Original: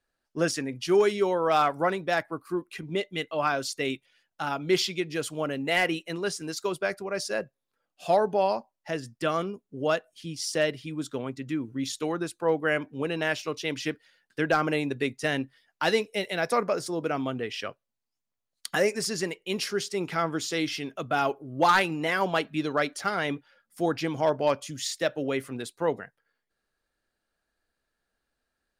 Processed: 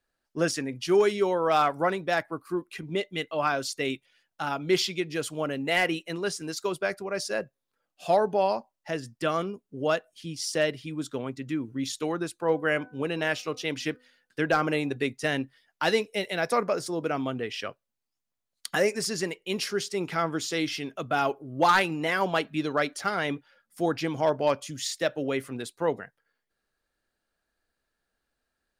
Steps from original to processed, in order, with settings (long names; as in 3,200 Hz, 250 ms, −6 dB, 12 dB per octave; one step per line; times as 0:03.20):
0:12.43–0:14.96: hum removal 250.2 Hz, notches 6